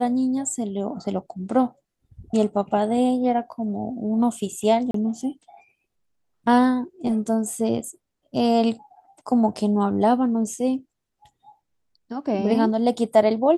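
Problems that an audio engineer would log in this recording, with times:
0:04.91–0:04.94: drop-out 33 ms

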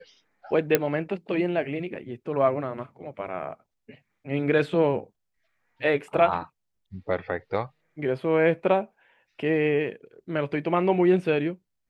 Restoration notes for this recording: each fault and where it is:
0:00.75: click −5 dBFS

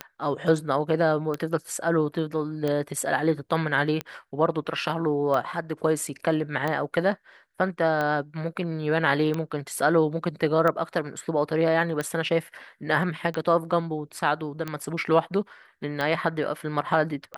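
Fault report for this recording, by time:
scratch tick 45 rpm −15 dBFS

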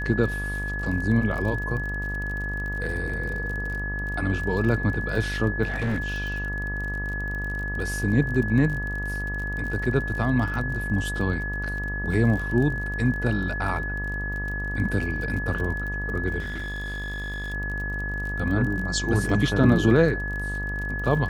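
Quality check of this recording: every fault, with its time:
mains buzz 50 Hz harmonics 26 −31 dBFS
surface crackle 38 per second −32 dBFS
whistle 1,700 Hz −30 dBFS
0:05.63–0:06.28: clipping −22 dBFS
0:16.39–0:17.54: clipping −28.5 dBFS

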